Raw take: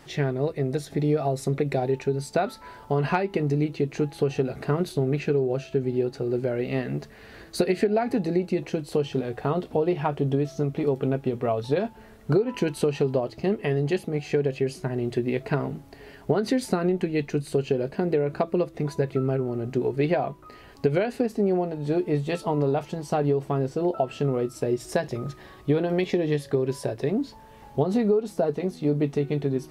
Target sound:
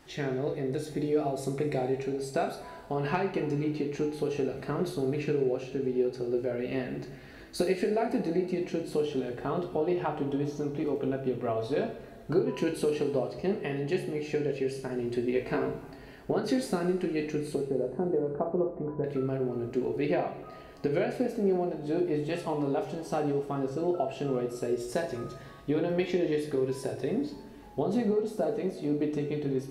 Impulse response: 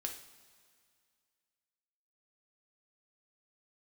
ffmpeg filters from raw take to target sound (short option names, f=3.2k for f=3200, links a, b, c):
-filter_complex "[0:a]asettb=1/sr,asplit=3[a][b][c];[a]atrim=end=15.344[d];[b]atrim=start=15.34:end=15.92,asetpts=PTS-STARTPTS,afade=t=in:d=0.004:c=qsin,afade=t=out:st=0.576:d=0.004:c=qsin,asplit=2[e][f];[f]adelay=18,volume=-3dB[g];[e][g]amix=inputs=2:normalize=0,atrim=end_sample=25578[h];[c]atrim=start=15.916[i];[d][h]acrossfade=d=0.004:c1=hsin:c2=qsin[j];[j][i]acrossfade=d=0.004:c1=qsin:c2=hsin,asettb=1/sr,asplit=3[k][l][m];[k]atrim=end=17.554[n];[l]atrim=start=17.55:end=19.04,asetpts=PTS-STARTPTS,afade=t=in:d=0.004:c=qsin,afade=t=out:st=1.486:d=0.004:c=qsin,lowpass=f=1.2k:w=0.5412,lowpass=f=1.2k:w=1.3066[o];[m]atrim=start=19.036[p];[n][o]acrossfade=d=0.004:c1=hsin:c2=qsin[q];[q][p]acrossfade=d=0.004:c1=qsin:c2=hsin[r];[1:a]atrim=start_sample=2205[s];[r][s]afir=irnorm=-1:irlink=0,volume=-3.5dB"